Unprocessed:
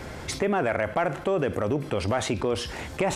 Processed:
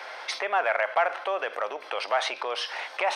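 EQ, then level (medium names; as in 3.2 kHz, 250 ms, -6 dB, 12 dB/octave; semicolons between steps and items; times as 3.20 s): Savitzky-Golay filter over 15 samples; high-pass 660 Hz 24 dB/octave; +4.0 dB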